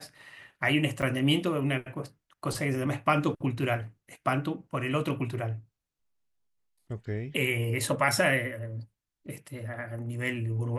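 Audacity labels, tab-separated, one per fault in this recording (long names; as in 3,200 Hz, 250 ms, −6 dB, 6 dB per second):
1.020000	1.030000	drop-out 7.5 ms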